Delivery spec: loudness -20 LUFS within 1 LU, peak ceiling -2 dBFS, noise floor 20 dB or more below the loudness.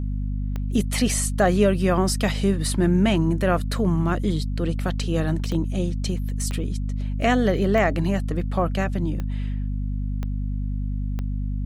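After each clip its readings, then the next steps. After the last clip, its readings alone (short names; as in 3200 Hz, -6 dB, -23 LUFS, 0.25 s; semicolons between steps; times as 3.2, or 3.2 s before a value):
clicks 7; hum 50 Hz; harmonics up to 250 Hz; hum level -23 dBFS; loudness -24.0 LUFS; peak -7.0 dBFS; loudness target -20.0 LUFS
-> de-click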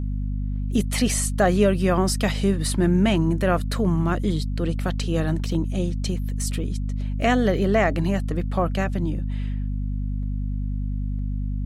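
clicks 0; hum 50 Hz; harmonics up to 250 Hz; hum level -23 dBFS
-> notches 50/100/150/200/250 Hz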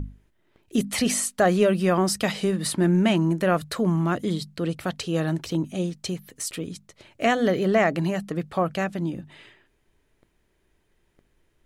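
hum none; loudness -24.5 LUFS; peak -7.5 dBFS; loudness target -20.0 LUFS
-> gain +4.5 dB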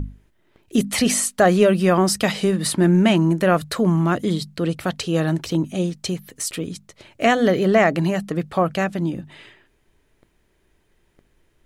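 loudness -20.0 LUFS; peak -3.0 dBFS; noise floor -64 dBFS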